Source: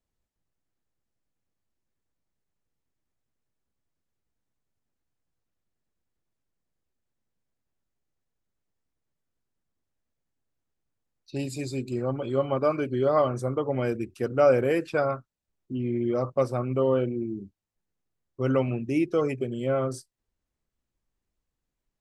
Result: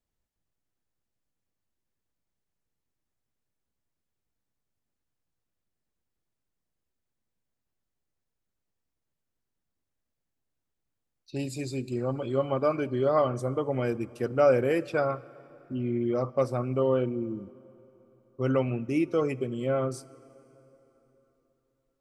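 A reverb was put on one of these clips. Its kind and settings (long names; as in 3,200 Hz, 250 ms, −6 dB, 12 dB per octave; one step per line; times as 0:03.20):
dense smooth reverb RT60 3.8 s, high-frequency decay 0.75×, DRR 20 dB
level −1.5 dB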